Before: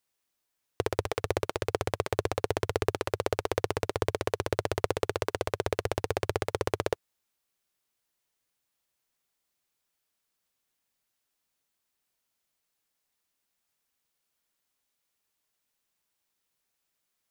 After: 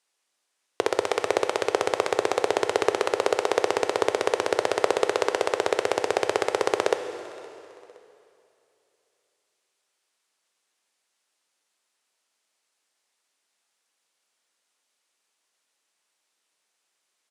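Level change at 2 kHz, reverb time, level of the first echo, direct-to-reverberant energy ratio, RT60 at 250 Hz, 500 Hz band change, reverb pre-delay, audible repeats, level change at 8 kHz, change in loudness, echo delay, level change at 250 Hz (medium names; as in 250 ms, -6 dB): +7.5 dB, 2.8 s, -24.0 dB, 8.0 dB, 2.9 s, +7.0 dB, 9 ms, 2, +7.0 dB, +6.5 dB, 517 ms, +4.0 dB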